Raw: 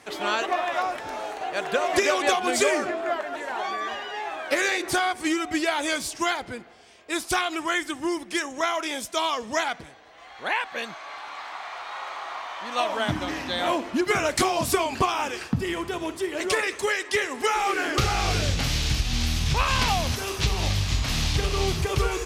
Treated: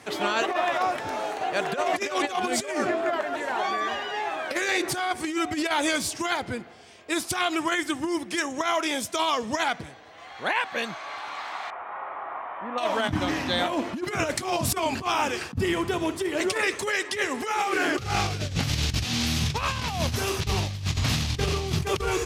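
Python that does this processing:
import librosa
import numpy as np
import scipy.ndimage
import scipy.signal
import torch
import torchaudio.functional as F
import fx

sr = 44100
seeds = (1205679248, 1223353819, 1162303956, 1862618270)

y = fx.gaussian_blur(x, sr, sigma=4.7, at=(11.7, 12.78))
y = fx.highpass(y, sr, hz=fx.line((19.03, 210.0), (19.56, 83.0)), slope=12, at=(19.03, 19.56), fade=0.02)
y = scipy.signal.sosfilt(scipy.signal.butter(4, 80.0, 'highpass', fs=sr, output='sos'), y)
y = fx.low_shelf(y, sr, hz=170.0, db=8.5)
y = fx.over_compress(y, sr, threshold_db=-25.0, ratio=-0.5)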